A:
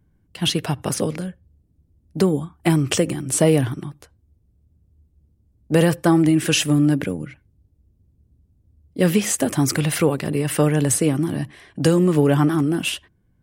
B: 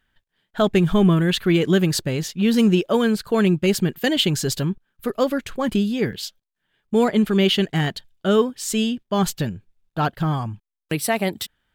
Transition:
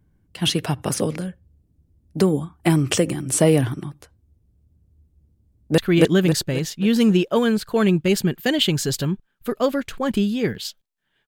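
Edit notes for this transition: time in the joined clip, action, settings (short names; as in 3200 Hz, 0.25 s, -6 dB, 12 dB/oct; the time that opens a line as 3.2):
A
5.42–5.78 echo throw 0.27 s, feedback 45%, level 0 dB
5.78 switch to B from 1.36 s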